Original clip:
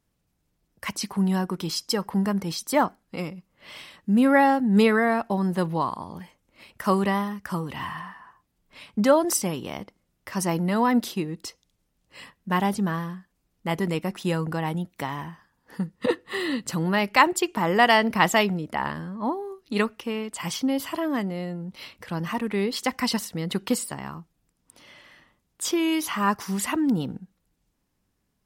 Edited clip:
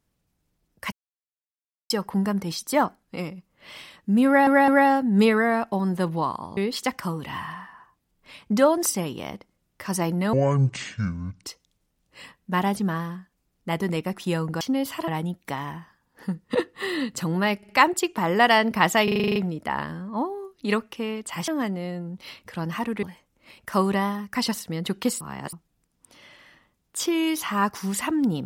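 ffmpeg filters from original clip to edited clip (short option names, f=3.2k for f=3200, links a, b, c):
-filter_complex "[0:a]asplit=26[a][b][c][d][e][f][g][h][i][j][k][l][m][n][o][p][q][r][s][t][u][v][w][x][y][z];[a]atrim=end=0.92,asetpts=PTS-STARTPTS,afade=t=out:st=0.916:d=0.004:c=hsin[aa];[b]atrim=start=0.92:end=1.9,asetpts=PTS-STARTPTS,volume=0[ab];[c]atrim=start=1.9:end=4.472,asetpts=PTS-STARTPTS,afade=t=in:d=0.004:c=hsin[ac];[d]atrim=start=4.258:end=4.472[ad];[e]atrim=start=4.258:end=6.152[ae];[f]atrim=start=22.568:end=23.002[af];[g]atrim=start=7.468:end=10.804[ag];[h]atrim=start=10.8:end=11.42,asetpts=PTS-STARTPTS,asetrate=24696,aresample=44100[ah];[i]atrim=start=11.416:end=14.592[ai];[j]atrim=start=20.548:end=21.022[aj];[k]atrim=start=14.588:end=17.142[ak];[l]atrim=start=17.078:end=17.142[al];[m]atrim=start=17.078:end=18.472[am];[n]atrim=start=18.428:end=18.472[an];[o]atrim=start=18.428:end=18.472[ao];[p]atrim=start=18.428:end=18.472[ap];[q]atrim=start=18.428:end=18.472[aq];[r]atrim=start=18.428:end=18.472[ar];[s]atrim=start=18.428:end=18.472[as];[t]atrim=start=18.428:end=18.472[at];[u]atrim=start=18.428:end=20.552[au];[v]atrim=start=21.018:end=22.572[av];[w]atrim=start=6.148:end=7.472[aw];[x]atrim=start=22.998:end=23.862[ax];[y]atrim=start=23.858:end=24.182,asetpts=PTS-STARTPTS,areverse[ay];[z]atrim=start=24.178[az];[aa][ab][ac]concat=n=3:v=0:a=1[ba];[ba][ad]acrossfade=d=0.004:c1=hsin:c2=hsin[bb];[bb][ae]acrossfade=d=0.004:c1=hsin:c2=hsin[bc];[bc][af]acrossfade=d=0.004:c1=hsin:c2=hsin[bd];[bd][ag]acrossfade=d=0.004:c1=hsin:c2=hsin[be];[be][ah]acrossfade=d=0.004:c1=hsin:c2=hsin[bf];[bf][ai]acrossfade=d=0.004:c1=hsin:c2=hsin[bg];[bg][aj]acrossfade=d=0.004:c1=hsin:c2=hsin[bh];[bh][ak]acrossfade=d=0.004:c1=hsin:c2=hsin[bi];[bi][al]acrossfade=d=0.004:c1=hsin:c2=hsin[bj];[bj][am]acrossfade=d=0.004:c1=hsin:c2=hsin[bk];[bk][an]acrossfade=d=0.004:c1=hsin:c2=hsin[bl];[bl][ao]acrossfade=d=0.004:c1=hsin:c2=hsin[bm];[bm][ap]acrossfade=d=0.004:c1=hsin:c2=hsin[bn];[bn][aq]acrossfade=d=0.004:c1=hsin:c2=hsin[bo];[bo][ar]acrossfade=d=0.004:c1=hsin:c2=hsin[bp];[bp][as]acrossfade=d=0.004:c1=hsin:c2=hsin[bq];[bq][at]acrossfade=d=0.004:c1=hsin:c2=hsin[br];[br][au]acrossfade=d=0.004:c1=hsin:c2=hsin[bs];[bs][av]acrossfade=d=0.004:c1=hsin:c2=hsin[bt];[bt][aw]acrossfade=d=0.004:c1=hsin:c2=hsin[bu];[bu][ax]acrossfade=d=0.004:c1=hsin:c2=hsin[bv];[bv][ay]acrossfade=d=0.004:c1=hsin:c2=hsin[bw];[bw][az]acrossfade=d=0.004:c1=hsin:c2=hsin"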